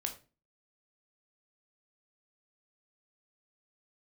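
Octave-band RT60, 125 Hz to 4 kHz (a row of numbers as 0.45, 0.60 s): 0.45, 0.45, 0.35, 0.30, 0.30, 0.25 s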